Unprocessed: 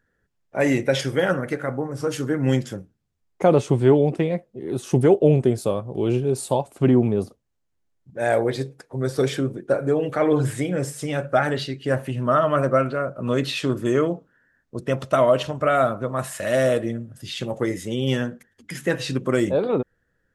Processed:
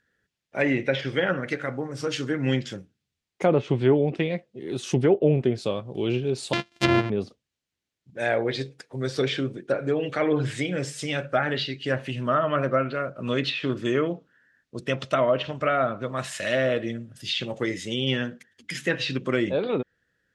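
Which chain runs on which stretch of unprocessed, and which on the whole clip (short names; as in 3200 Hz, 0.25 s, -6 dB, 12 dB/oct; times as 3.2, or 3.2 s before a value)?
6.53–7.1 sample sorter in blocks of 128 samples + upward expander, over -36 dBFS
whole clip: weighting filter D; treble ducked by the level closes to 1700 Hz, closed at -13.5 dBFS; low shelf 190 Hz +8 dB; gain -5 dB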